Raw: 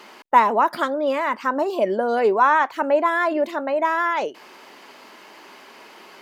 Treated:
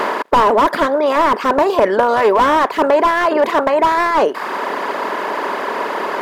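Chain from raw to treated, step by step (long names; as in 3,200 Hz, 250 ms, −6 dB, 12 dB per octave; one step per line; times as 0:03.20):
compressor on every frequency bin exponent 0.4
reverb reduction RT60 1.1 s
slew-rate limiting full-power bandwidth 230 Hz
level +3.5 dB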